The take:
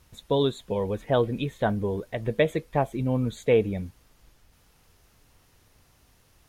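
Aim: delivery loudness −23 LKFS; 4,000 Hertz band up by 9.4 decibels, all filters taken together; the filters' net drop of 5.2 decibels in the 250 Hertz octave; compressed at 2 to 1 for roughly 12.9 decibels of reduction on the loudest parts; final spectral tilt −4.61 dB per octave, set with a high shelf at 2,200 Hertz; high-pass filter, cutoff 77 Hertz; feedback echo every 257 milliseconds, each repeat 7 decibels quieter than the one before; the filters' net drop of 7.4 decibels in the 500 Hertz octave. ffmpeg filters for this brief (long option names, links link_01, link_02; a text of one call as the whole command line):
ffmpeg -i in.wav -af "highpass=77,equalizer=frequency=250:width_type=o:gain=-4.5,equalizer=frequency=500:width_type=o:gain=-8,highshelf=frequency=2200:gain=6.5,equalizer=frequency=4000:width_type=o:gain=5.5,acompressor=threshold=-43dB:ratio=2,aecho=1:1:257|514|771|1028|1285:0.447|0.201|0.0905|0.0407|0.0183,volume=16dB" out.wav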